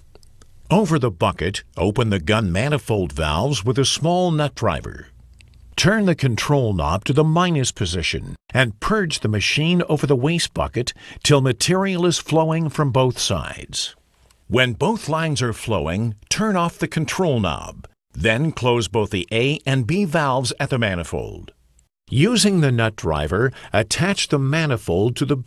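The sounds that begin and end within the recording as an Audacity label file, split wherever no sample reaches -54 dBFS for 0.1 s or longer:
8.500000	17.930000	sound
18.110000	21.840000	sound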